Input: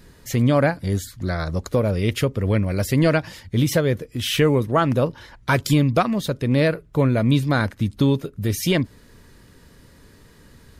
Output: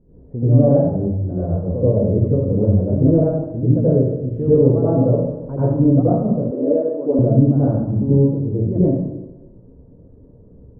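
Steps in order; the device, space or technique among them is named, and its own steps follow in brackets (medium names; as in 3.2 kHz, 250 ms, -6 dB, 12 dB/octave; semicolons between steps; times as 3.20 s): next room (low-pass 600 Hz 24 dB/octave; reverberation RT60 1.0 s, pre-delay 78 ms, DRR -10.5 dB); 6.51–7.19 s: high-pass 280 Hz 24 dB/octave; trim -6.5 dB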